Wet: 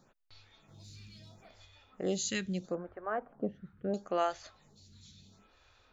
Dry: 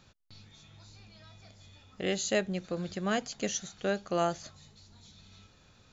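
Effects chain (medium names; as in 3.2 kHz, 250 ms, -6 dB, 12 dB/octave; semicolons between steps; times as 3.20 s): 0.68–1.65 s: waveshaping leveller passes 1; 2.75–3.94 s: low-pass 1.4 kHz 24 dB/octave; lamp-driven phase shifter 0.75 Hz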